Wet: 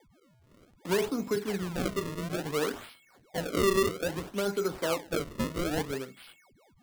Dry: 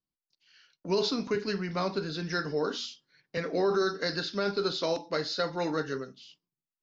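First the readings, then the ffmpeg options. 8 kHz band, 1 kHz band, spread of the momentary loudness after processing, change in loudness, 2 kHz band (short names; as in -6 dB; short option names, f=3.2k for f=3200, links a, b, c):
n/a, -1.0 dB, 10 LU, -0.5 dB, -1.0 dB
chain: -filter_complex "[0:a]acrossover=split=190|870|1400[a][b][c][d];[d]acompressor=threshold=-44dB:ratio=6[e];[a][b][c][e]amix=inputs=4:normalize=0,aeval=exprs='val(0)+0.001*sin(2*PI*2200*n/s)':c=same,acrusher=samples=32:mix=1:aa=0.000001:lfo=1:lforange=51.2:lforate=0.6"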